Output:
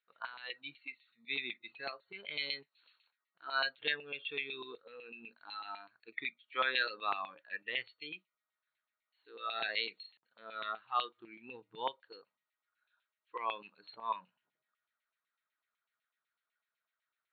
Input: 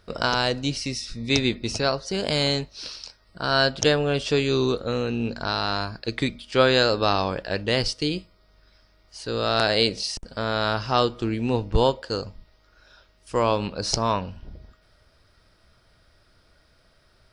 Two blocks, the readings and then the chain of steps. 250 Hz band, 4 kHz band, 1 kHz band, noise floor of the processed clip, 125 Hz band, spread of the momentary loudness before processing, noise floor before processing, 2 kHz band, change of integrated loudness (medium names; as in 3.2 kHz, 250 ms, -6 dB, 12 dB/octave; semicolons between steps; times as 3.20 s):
-30.0 dB, -15.5 dB, -13.0 dB, under -85 dBFS, under -35 dB, 11 LU, -61 dBFS, -9.5 dB, -15.0 dB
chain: spectral noise reduction 17 dB; treble shelf 2.1 kHz +10 dB; LFO band-pass saw down 8 Hz 960–2600 Hz; band-stop 580 Hz, Q 12; FFT band-pass 110–4400 Hz; trim -7.5 dB